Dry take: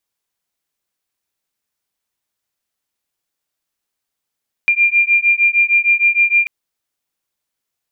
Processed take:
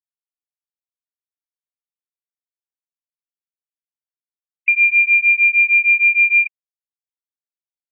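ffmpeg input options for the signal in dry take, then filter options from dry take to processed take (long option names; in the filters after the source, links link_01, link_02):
-f lavfi -i "aevalsrc='0.211*(sin(2*PI*2390*t)+sin(2*PI*2396.5*t))':duration=1.79:sample_rate=44100"
-af "afftfilt=real='re*gte(hypot(re,im),0.126)':imag='im*gte(hypot(re,im),0.126)':win_size=1024:overlap=0.75"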